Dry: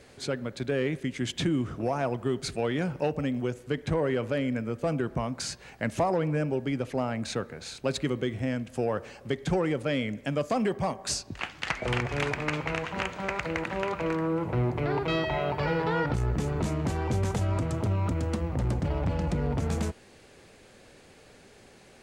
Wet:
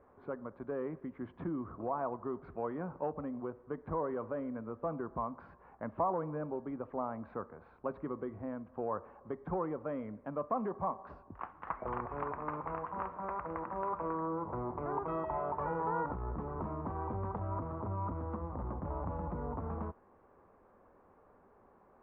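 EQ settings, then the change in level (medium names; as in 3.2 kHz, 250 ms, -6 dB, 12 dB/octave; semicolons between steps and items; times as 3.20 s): four-pole ladder low-pass 1.2 kHz, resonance 65%; distance through air 120 m; peaking EQ 130 Hz -11.5 dB 0.31 oct; +1.0 dB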